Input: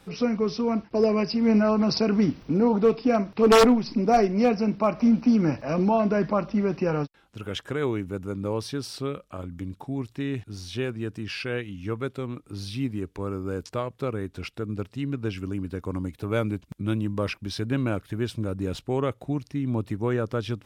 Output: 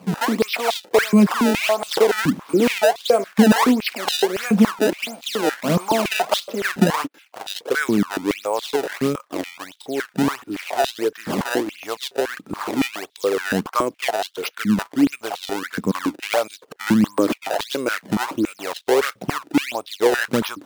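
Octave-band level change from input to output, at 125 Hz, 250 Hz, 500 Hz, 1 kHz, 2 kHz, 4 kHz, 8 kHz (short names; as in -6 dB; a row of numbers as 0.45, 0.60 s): -0.5, +4.0, +4.0, +6.0, +11.5, +9.5, +12.5 dB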